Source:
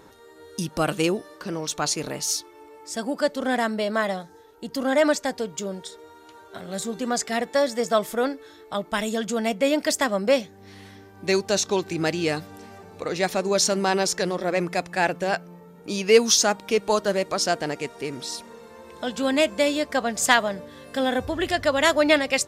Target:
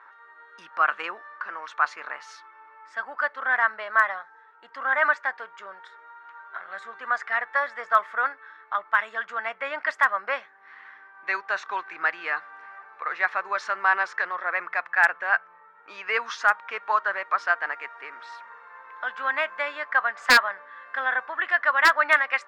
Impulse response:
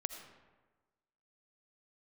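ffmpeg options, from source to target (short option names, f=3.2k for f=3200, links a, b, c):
-af "asuperpass=centerf=1400:order=4:qfactor=1.7,aeval=exprs='0.158*(abs(mod(val(0)/0.158+3,4)-2)-1)':c=same,volume=9dB"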